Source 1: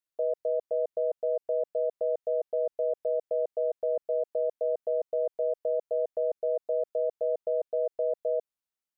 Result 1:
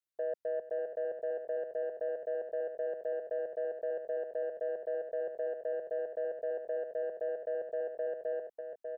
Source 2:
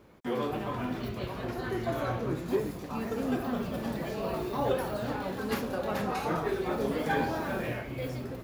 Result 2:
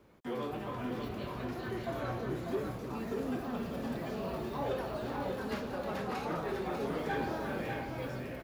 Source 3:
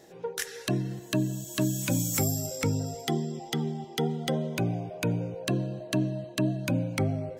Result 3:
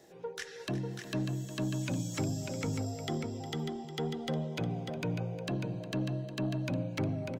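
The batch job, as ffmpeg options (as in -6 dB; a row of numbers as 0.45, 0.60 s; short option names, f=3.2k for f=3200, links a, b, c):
-filter_complex "[0:a]acrossover=split=190|6400[a][b][c];[c]acompressor=threshold=-56dB:ratio=10[d];[a][b][d]amix=inputs=3:normalize=0,asoftclip=type=tanh:threshold=-21.5dB,aecho=1:1:358|595:0.188|0.531,volume=-5dB"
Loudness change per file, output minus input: -6.5, -4.5, -6.0 LU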